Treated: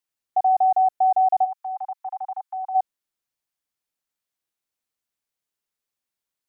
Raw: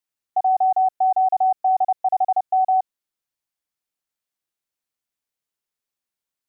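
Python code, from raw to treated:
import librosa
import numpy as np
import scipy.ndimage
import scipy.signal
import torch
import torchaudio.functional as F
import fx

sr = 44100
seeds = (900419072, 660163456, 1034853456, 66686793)

y = fx.steep_highpass(x, sr, hz=840.0, slope=72, at=(1.44, 2.74), fade=0.02)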